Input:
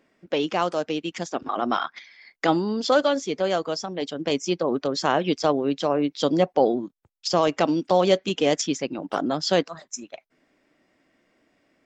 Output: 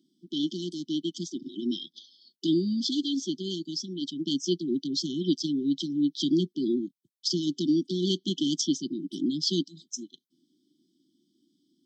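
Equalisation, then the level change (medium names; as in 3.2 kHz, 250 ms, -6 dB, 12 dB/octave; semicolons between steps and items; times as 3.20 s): high-pass 160 Hz 24 dB/octave; brick-wall FIR band-stop 380–3000 Hz; band-stop 7.1 kHz, Q 7.4; 0.0 dB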